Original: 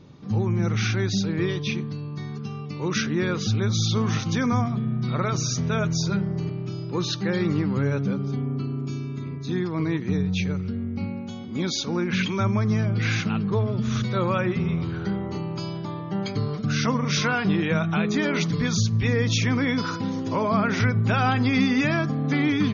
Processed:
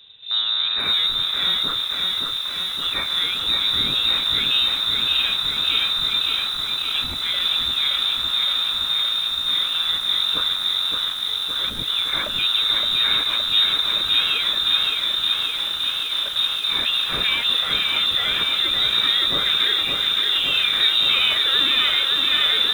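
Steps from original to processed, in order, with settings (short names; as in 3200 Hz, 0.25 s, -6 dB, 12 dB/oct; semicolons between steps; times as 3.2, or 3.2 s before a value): rattling part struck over -28 dBFS, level -25 dBFS; inverted band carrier 3800 Hz; lo-fi delay 0.567 s, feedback 80%, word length 7-bit, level -3.5 dB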